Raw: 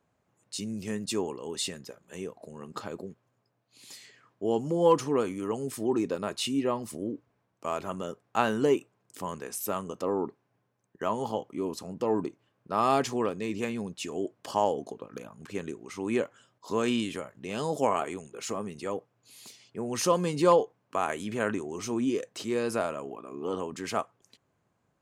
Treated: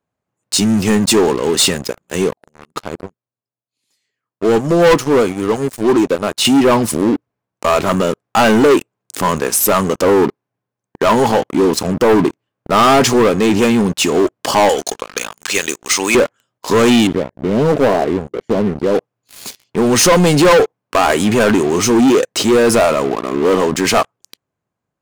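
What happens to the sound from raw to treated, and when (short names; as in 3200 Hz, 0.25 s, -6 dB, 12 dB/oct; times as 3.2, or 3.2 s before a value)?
2.33–6.45 upward expander, over -47 dBFS
14.69–16.15 weighting filter ITU-R 468
17.07–18.95 running mean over 34 samples
whole clip: sample leveller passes 5; gain +4.5 dB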